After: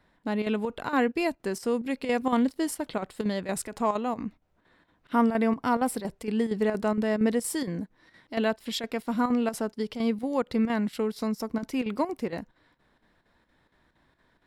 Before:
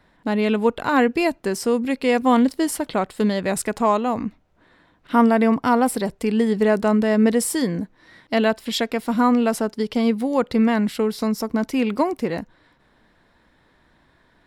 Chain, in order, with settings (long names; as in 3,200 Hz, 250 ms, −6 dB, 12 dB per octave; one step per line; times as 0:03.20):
square-wave tremolo 4.3 Hz, depth 60%, duty 80%
level −7 dB